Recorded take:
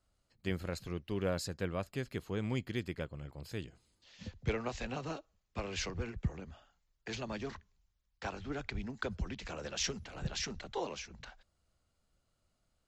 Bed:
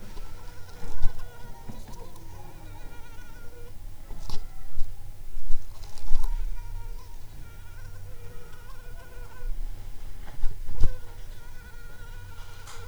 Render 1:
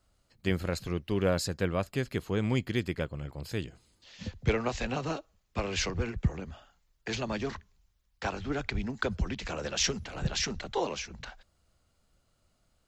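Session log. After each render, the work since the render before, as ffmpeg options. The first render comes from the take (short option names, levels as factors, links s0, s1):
-af "volume=2.24"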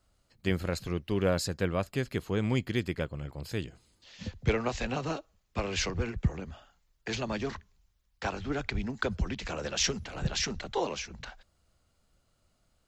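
-af anull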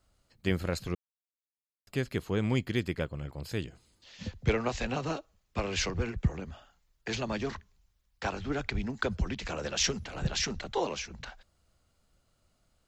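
-filter_complex "[0:a]asplit=3[s0][s1][s2];[s0]atrim=end=0.95,asetpts=PTS-STARTPTS,afade=t=out:st=0.946:d=0.004:c=hsin[s3];[s1]atrim=start=0.95:end=1.87,asetpts=PTS-STARTPTS,volume=0[s4];[s2]atrim=start=1.87,asetpts=PTS-STARTPTS,afade=t=in:d=0.004:c=hsin[s5];[s3][s4][s5]concat=n=3:v=0:a=1"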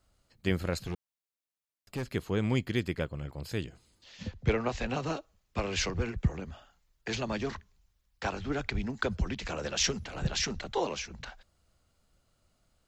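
-filter_complex "[0:a]asettb=1/sr,asplit=3[s0][s1][s2];[s0]atrim=end=0.794[s3];[s1]atrim=start=0.79:end=2.15,asetpts=PTS-STARTPTS,afade=t=in:d=0.004:c=qsin,afade=t=out:st=1.356:d=0.004:c=qsin,asoftclip=type=hard:threshold=0.0316[s4];[s2]atrim=start=2.146[s5];[s3][s4]acrossfade=d=0.004:c1=hsin:c2=qsin[s6];[s6][s5]acrossfade=d=0.004:c1=qsin:c2=hsin,asettb=1/sr,asplit=3[s7][s8][s9];[s7]atrim=end=4.234[s10];[s8]atrim=start=4.23:end=4.9,asetpts=PTS-STARTPTS,afade=t=in:d=0.004:c=qsin,afade=t=out:st=0.666:d=0.004:c=qsin,highshelf=f=4400:g=-6.5[s11];[s9]atrim=start=4.896[s12];[s10][s11]acrossfade=d=0.004:c1=hsin:c2=qsin[s13];[s13][s12]acrossfade=d=0.004:c1=qsin:c2=hsin"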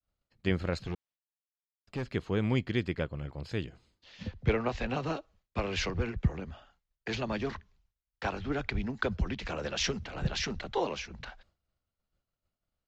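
-af "agate=range=0.0224:threshold=0.00112:ratio=3:detection=peak,lowpass=4500"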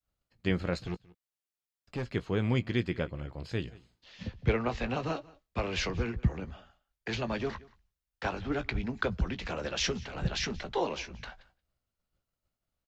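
-filter_complex "[0:a]asplit=2[s0][s1];[s1]adelay=17,volume=0.282[s2];[s0][s2]amix=inputs=2:normalize=0,aecho=1:1:179:0.075"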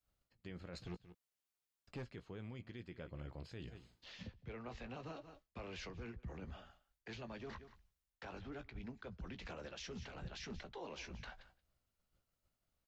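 -af "areverse,acompressor=threshold=0.0126:ratio=12,areverse,alimiter=level_in=5.96:limit=0.0631:level=0:latency=1:release=226,volume=0.168"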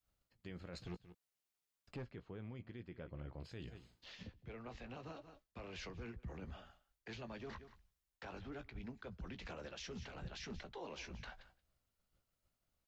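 -filter_complex "[0:a]asettb=1/sr,asplit=3[s0][s1][s2];[s0]atrim=end=1.964[s3];[s1]atrim=start=1.96:end=3.41,asetpts=PTS-STARTPTS,afade=t=in:d=0.004:c=qsin,afade=t=out:st=1.446:d=0.004:c=qsin,aemphasis=mode=reproduction:type=75kf[s4];[s2]atrim=start=3.406[s5];[s3][s4]acrossfade=d=0.004:c1=hsin:c2=qsin[s6];[s6][s5]acrossfade=d=0.004:c1=qsin:c2=hsin,asettb=1/sr,asplit=3[s7][s8][s9];[s7]atrim=end=4.154[s10];[s8]atrim=start=4.15:end=5.75,asetpts=PTS-STARTPTS,afade=t=in:d=0.004:c=qsin,afade=t=out:st=1.596:d=0.004:c=qsin,tremolo=f=230:d=0.4[s11];[s9]atrim=start=5.746[s12];[s10][s11]acrossfade=d=0.004:c1=hsin:c2=qsin[s13];[s13][s12]acrossfade=d=0.004:c1=qsin:c2=hsin"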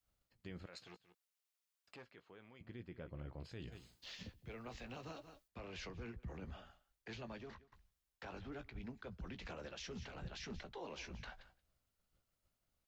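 -filter_complex "[0:a]asettb=1/sr,asplit=3[s0][s1][s2];[s0]atrim=end=0.664[s3];[s1]atrim=start=0.66:end=2.61,asetpts=PTS-STARTPTS,afade=t=in:d=0.004:c=qsin,afade=t=out:st=1.946:d=0.004:c=qsin,highpass=f=970:p=1[s4];[s2]atrim=start=2.606[s5];[s3][s4]acrossfade=d=0.004:c1=hsin:c2=qsin[s6];[s6][s5]acrossfade=d=0.004:c1=qsin:c2=hsin,asettb=1/sr,asplit=3[s7][s8][s9];[s7]atrim=end=3.724[s10];[s8]atrim=start=3.72:end=5.48,asetpts=PTS-STARTPTS,afade=t=in:d=0.004:c=qsin,afade=t=out:st=1.756:d=0.004:c=qsin,highshelf=f=4400:g=11[s11];[s9]atrim=start=5.476[s12];[s10][s11]acrossfade=d=0.004:c1=hsin:c2=qsin[s13];[s13][s12]acrossfade=d=0.004:c1=qsin:c2=hsin,asplit=2[s14][s15];[s14]atrim=end=7.72,asetpts=PTS-STARTPTS,afade=t=out:st=7.32:d=0.4:silence=0.1[s16];[s15]atrim=start=7.72,asetpts=PTS-STARTPTS,afade=t=in:d=0.004:c=hsin:silence=0.1[s17];[s16][s17]concat=n=2:v=0:a=1"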